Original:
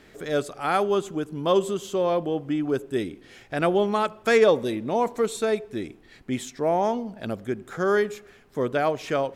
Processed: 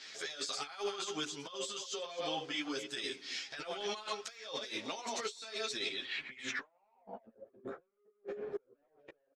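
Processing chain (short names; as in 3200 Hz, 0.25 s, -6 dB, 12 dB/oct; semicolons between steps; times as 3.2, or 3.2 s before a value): reverse delay 0.168 s, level -10.5 dB; air absorption 65 m; notches 60/120/180/240/300/360/420/480/540 Hz; comb 7.5 ms, depth 43%; limiter -17.5 dBFS, peak gain reduction 10 dB; band-pass sweep 5200 Hz -> 490 Hz, 5.71–7.41; soft clip -30.5 dBFS, distortion -10 dB; negative-ratio compressor -54 dBFS, ratio -0.5; ensemble effect; gain +12 dB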